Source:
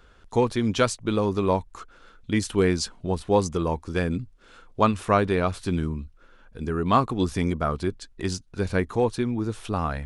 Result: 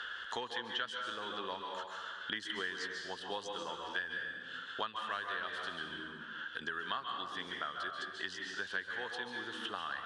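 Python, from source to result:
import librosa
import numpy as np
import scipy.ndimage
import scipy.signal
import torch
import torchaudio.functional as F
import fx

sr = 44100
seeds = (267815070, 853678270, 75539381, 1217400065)

y = fx.double_bandpass(x, sr, hz=2300.0, octaves=0.86)
y = fx.rev_plate(y, sr, seeds[0], rt60_s=0.96, hf_ratio=0.8, predelay_ms=120, drr_db=2.5)
y = fx.band_squash(y, sr, depth_pct=100)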